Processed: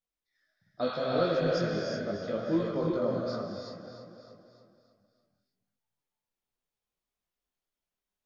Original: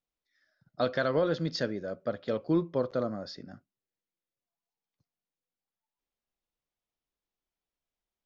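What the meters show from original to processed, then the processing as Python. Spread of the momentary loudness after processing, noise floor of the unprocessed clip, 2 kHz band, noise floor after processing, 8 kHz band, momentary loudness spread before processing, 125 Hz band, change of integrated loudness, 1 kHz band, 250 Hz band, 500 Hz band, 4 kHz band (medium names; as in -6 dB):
17 LU, under -85 dBFS, -2.0 dB, under -85 dBFS, no reading, 13 LU, +1.0 dB, 0.0 dB, +1.5 dB, +0.5 dB, +1.0 dB, 0.0 dB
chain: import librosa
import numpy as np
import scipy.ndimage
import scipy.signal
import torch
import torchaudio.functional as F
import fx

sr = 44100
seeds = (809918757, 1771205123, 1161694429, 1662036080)

p1 = fx.spec_repair(x, sr, seeds[0], start_s=0.89, length_s=0.73, low_hz=710.0, high_hz=4700.0, source='both')
p2 = p1 + fx.echo_feedback(p1, sr, ms=302, feedback_pct=51, wet_db=-10, dry=0)
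p3 = fx.rev_gated(p2, sr, seeds[1], gate_ms=400, shape='rising', drr_db=-1.5)
y = fx.detune_double(p3, sr, cents=24)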